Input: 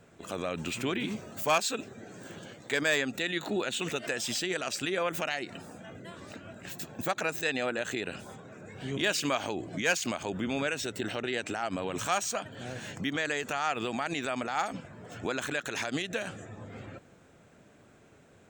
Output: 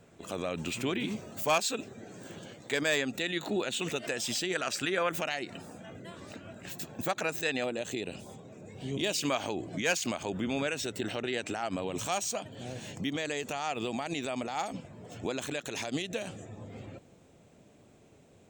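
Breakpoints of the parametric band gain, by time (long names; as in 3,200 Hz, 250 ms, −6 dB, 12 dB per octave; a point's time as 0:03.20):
parametric band 1,500 Hz 0.84 octaves
−4 dB
from 0:04.55 +3.5 dB
from 0:05.11 −3 dB
from 0:07.64 −14.5 dB
from 0:09.21 −4 dB
from 0:11.81 −10.5 dB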